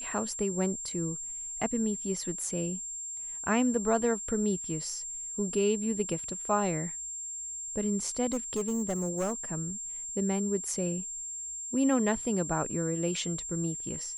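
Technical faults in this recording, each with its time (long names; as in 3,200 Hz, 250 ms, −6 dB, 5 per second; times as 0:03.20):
whistle 7,400 Hz −36 dBFS
0:08.32–0:09.33: clipping −26 dBFS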